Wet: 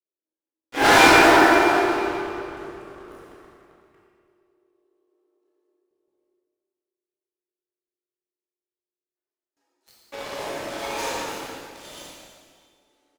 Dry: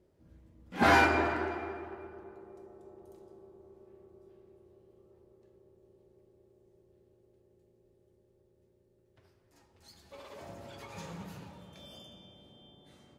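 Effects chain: steep high-pass 260 Hz 96 dB/octave; gate with hold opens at -55 dBFS; waveshaping leveller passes 5; doubling 31 ms -12.5 dB; reverberation RT60 1.8 s, pre-delay 7 ms, DRR -6 dB; trim -4.5 dB

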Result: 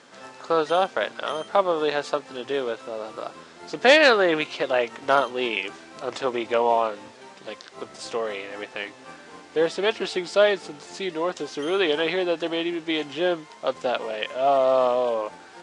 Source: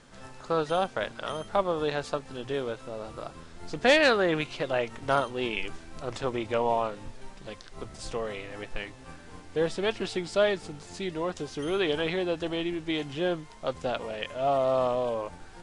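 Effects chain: band-pass 300–7600 Hz; trim +6 dB

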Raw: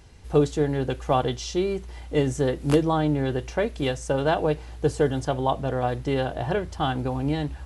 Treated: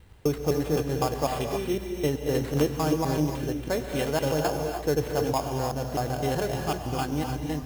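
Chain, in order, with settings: slices played last to first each 127 ms, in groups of 2; sample-rate reducer 5.9 kHz, jitter 0%; gated-style reverb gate 330 ms rising, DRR 3.5 dB; trim -4 dB

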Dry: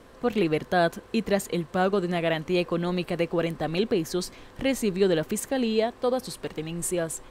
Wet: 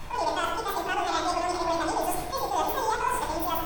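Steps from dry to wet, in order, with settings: spectrogram pixelated in time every 50 ms; added noise brown -40 dBFS; reverse; compression, threshold -31 dBFS, peak gain reduction 12.5 dB; reverse; speed mistake 7.5 ips tape played at 15 ips; bass shelf 300 Hz -10 dB; reverberation RT60 1.2 s, pre-delay 3 ms, DRR -1 dB; attacks held to a fixed rise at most 150 dB/s; trim +2 dB

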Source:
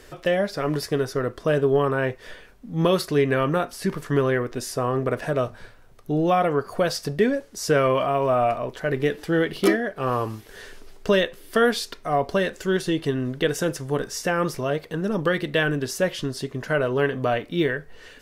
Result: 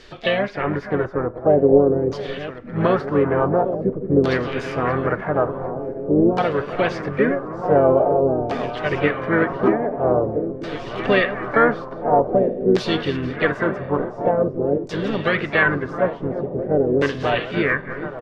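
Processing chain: backward echo that repeats 660 ms, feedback 80%, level -11.5 dB; LFO low-pass saw down 0.47 Hz 330–4300 Hz; harmony voices -7 st -10 dB, +4 st -9 dB

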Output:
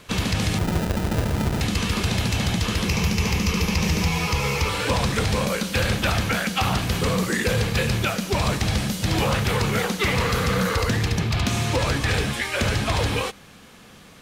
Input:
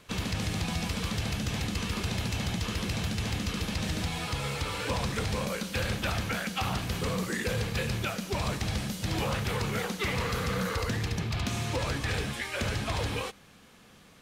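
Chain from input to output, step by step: 0.58–1.61 s: sample-rate reducer 1.1 kHz, jitter 0%; 2.88–4.69 s: rippled EQ curve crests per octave 0.8, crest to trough 8 dB; trim +8.5 dB

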